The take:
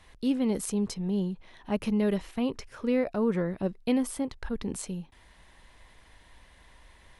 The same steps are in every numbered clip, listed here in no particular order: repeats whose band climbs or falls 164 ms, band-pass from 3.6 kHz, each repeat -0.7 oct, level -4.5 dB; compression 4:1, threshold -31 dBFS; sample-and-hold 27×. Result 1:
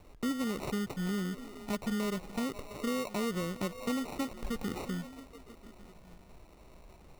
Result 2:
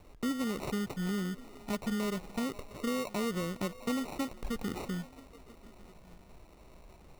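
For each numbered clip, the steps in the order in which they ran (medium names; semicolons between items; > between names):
repeats whose band climbs or falls > compression > sample-and-hold; compression > repeats whose band climbs or falls > sample-and-hold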